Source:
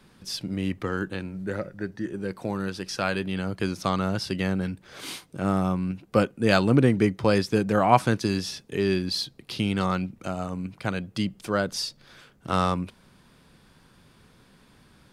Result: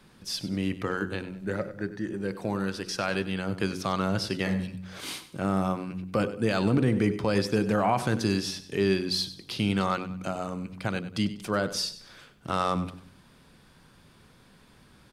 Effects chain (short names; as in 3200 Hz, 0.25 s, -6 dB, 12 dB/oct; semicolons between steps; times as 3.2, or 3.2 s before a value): spectral repair 4.49–4.76, 260–2300 Hz both; de-hum 46.17 Hz, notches 11; limiter -14 dBFS, peak gain reduction 10.5 dB; feedback echo 97 ms, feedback 34%, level -14 dB